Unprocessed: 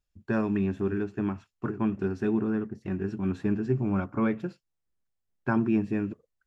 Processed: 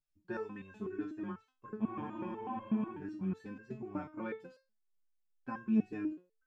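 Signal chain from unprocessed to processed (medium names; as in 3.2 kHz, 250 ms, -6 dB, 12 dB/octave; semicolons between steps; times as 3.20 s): spectral freeze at 1.83 s, 1.10 s; resonator arpeggio 8.1 Hz 150–530 Hz; trim +3 dB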